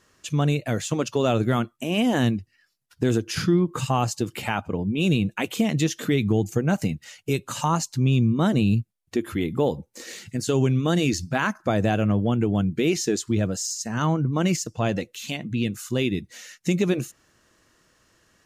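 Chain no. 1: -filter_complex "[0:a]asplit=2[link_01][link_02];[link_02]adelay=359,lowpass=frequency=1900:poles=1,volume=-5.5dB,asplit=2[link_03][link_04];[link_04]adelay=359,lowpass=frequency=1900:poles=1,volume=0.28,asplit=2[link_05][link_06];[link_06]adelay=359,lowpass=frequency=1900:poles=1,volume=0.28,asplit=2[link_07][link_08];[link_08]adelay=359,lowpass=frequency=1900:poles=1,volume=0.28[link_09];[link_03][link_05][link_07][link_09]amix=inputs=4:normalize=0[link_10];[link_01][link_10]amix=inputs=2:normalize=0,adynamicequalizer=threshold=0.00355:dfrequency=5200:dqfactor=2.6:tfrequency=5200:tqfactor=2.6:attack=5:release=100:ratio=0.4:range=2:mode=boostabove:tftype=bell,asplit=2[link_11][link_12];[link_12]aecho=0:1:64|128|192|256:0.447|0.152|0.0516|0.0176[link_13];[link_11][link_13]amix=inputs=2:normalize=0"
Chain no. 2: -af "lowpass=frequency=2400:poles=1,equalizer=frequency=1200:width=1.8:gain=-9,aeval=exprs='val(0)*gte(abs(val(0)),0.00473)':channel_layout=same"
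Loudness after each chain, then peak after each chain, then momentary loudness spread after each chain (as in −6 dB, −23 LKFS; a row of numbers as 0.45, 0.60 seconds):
−22.5, −25.0 LKFS; −6.0, −10.0 dBFS; 7, 9 LU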